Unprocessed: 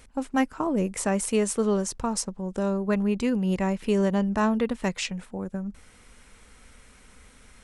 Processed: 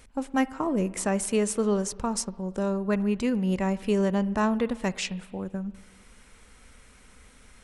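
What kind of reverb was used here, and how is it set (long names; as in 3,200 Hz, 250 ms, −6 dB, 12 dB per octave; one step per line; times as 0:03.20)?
spring reverb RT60 1.4 s, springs 48/57 ms, chirp 30 ms, DRR 18 dB
level −1 dB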